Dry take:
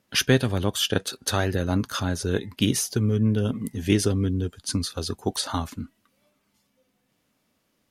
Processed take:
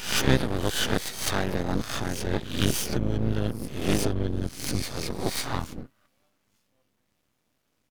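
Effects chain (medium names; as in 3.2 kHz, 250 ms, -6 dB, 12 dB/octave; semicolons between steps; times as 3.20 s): reverse spectral sustain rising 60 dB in 0.58 s; harmony voices -12 st -4 dB, +4 st -7 dB; half-wave rectifier; trim -3 dB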